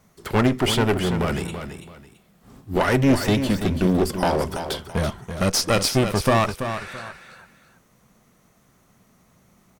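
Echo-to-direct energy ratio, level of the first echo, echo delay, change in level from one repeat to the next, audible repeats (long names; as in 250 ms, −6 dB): −8.5 dB, −9.0 dB, 333 ms, −11.5 dB, 2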